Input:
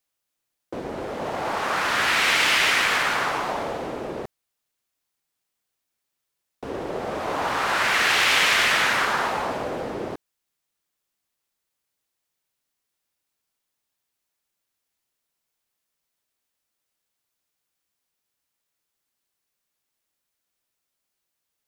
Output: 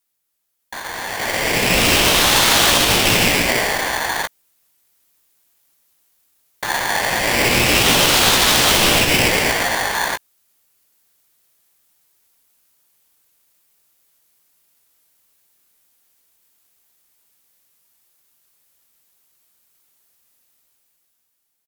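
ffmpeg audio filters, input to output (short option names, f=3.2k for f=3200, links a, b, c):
-filter_complex "[0:a]alimiter=limit=-14.5dB:level=0:latency=1:release=82,equalizer=f=15k:t=o:w=1.1:g=12,dynaudnorm=f=260:g=9:m=11.5dB,asplit=2[a][b];[b]adelay=17,volume=-7.5dB[c];[a][c]amix=inputs=2:normalize=0,aeval=exprs='val(0)*sgn(sin(2*PI*1300*n/s))':c=same,volume=-1dB"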